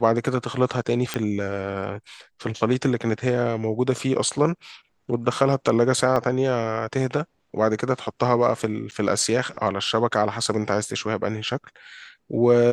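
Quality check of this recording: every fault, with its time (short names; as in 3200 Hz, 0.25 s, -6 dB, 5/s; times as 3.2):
1.14 pop -9 dBFS
6.16 gap 2.1 ms
8.91–8.92 gap 8.7 ms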